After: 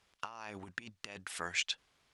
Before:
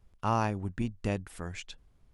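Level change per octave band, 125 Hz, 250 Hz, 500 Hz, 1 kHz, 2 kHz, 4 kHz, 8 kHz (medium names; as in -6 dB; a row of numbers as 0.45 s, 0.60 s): -22.5 dB, -18.0 dB, -13.5 dB, -12.5 dB, +3.0 dB, +8.5 dB, +6.0 dB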